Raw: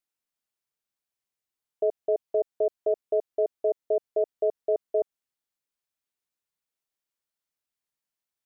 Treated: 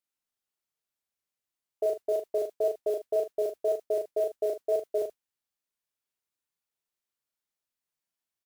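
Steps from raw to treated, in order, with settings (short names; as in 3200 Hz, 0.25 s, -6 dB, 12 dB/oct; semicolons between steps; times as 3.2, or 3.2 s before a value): modulation noise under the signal 27 dB; wow and flutter 18 cents; on a send: early reflections 36 ms -3.5 dB, 77 ms -13.5 dB; on the sum: gain -3 dB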